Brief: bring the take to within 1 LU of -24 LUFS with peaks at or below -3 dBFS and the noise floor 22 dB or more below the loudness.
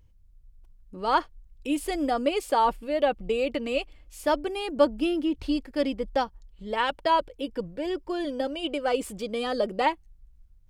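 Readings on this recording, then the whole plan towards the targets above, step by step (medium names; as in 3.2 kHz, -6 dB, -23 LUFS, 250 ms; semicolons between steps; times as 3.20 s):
loudness -27.5 LUFS; peak level -9.0 dBFS; loudness target -24.0 LUFS
-> trim +3.5 dB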